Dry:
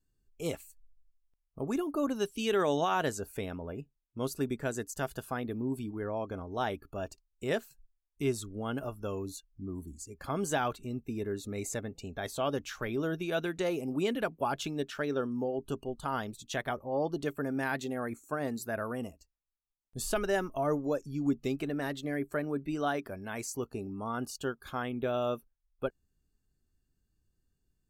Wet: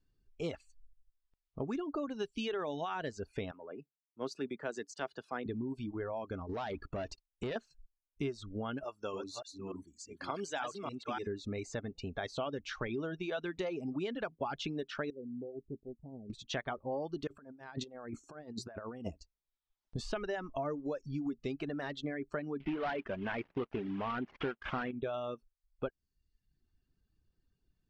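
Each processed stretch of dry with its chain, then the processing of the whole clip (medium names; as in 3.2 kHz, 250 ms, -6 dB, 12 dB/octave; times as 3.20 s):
3.51–5.46 s: high-pass 270 Hz + transient shaper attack -4 dB, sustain +1 dB + three bands expanded up and down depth 70%
6.49–7.56 s: compression 5:1, threshold -40 dBFS + waveshaping leveller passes 2
8.84–11.27 s: chunks repeated in reverse 293 ms, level -4 dB + high-pass 500 Hz 6 dB/octave + peaking EQ 8.8 kHz +7 dB 1.8 oct
15.10–16.30 s: Gaussian low-pass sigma 22 samples + tilt EQ +3 dB/octave
17.27–19.97 s: peaking EQ 2.3 kHz -6.5 dB 1.3 oct + compressor with a negative ratio -42 dBFS, ratio -0.5
22.60–24.91 s: CVSD coder 16 kbps + peaking EQ 86 Hz -9 dB 0.99 oct + waveshaping leveller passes 2
whole clip: compression 5:1, threshold -36 dBFS; reverb removal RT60 0.79 s; low-pass 5.2 kHz 24 dB/octave; trim +2.5 dB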